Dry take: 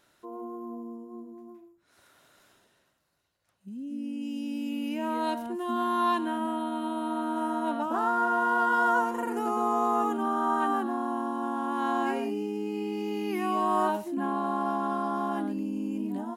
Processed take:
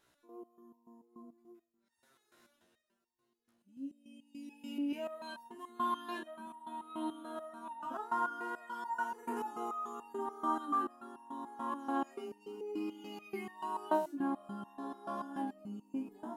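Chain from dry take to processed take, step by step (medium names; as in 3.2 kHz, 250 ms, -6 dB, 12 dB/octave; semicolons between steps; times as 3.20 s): feedback echo behind a low-pass 892 ms, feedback 81%, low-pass 750 Hz, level -22 dB; resonator arpeggio 6.9 Hz 62–910 Hz; trim +1.5 dB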